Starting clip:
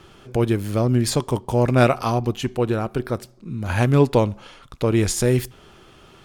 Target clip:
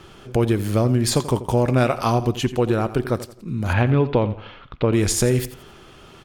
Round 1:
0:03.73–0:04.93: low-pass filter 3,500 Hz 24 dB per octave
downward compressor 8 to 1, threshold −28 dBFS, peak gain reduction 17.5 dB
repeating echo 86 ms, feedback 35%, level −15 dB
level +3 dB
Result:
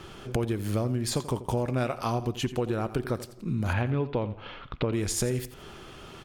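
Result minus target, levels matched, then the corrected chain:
downward compressor: peak gain reduction +10 dB
0:03.73–0:04.93: low-pass filter 3,500 Hz 24 dB per octave
downward compressor 8 to 1, threshold −16.5 dBFS, peak gain reduction 7.5 dB
repeating echo 86 ms, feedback 35%, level −15 dB
level +3 dB

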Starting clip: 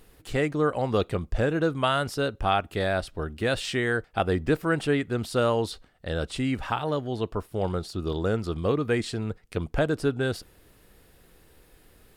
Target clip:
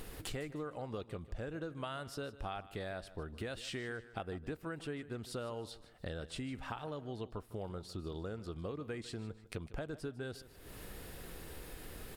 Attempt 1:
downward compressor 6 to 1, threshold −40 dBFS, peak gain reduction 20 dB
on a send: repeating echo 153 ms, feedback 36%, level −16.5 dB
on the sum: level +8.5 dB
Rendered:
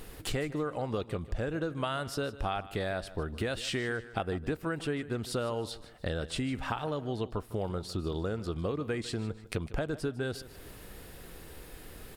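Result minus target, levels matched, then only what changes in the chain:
downward compressor: peak gain reduction −8.5 dB
change: downward compressor 6 to 1, threshold −50.5 dBFS, peak gain reduction 29 dB

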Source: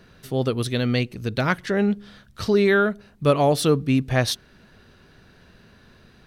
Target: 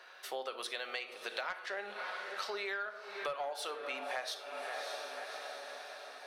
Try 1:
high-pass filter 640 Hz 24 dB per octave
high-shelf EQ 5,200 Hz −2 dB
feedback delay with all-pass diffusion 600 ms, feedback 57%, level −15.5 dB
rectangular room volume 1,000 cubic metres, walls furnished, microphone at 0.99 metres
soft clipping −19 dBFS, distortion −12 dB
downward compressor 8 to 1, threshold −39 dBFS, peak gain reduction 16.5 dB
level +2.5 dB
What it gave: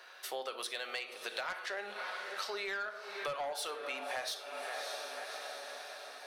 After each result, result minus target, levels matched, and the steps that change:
soft clipping: distortion +7 dB; 8,000 Hz band +3.5 dB
change: soft clipping −13 dBFS, distortion −18 dB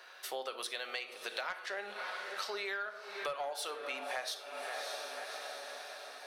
8,000 Hz band +3.5 dB
change: high-shelf EQ 5,200 Hz −9 dB

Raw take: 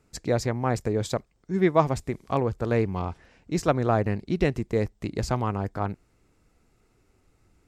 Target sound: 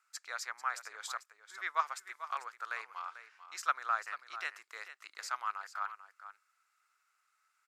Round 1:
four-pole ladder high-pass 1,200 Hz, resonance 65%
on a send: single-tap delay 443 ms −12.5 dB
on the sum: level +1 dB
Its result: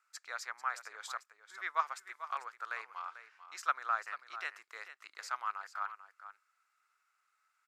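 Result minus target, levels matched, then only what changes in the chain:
8,000 Hz band −3.5 dB
add after four-pole ladder high-pass: high-shelf EQ 3,600 Hz +5 dB

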